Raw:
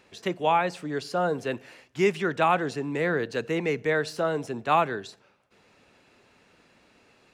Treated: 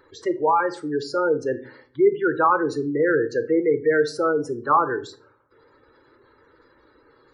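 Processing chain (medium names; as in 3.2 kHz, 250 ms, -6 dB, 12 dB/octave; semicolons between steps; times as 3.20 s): spectral gate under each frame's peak -15 dB strong; static phaser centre 700 Hz, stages 6; simulated room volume 320 m³, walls furnished, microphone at 0.63 m; trim +7.5 dB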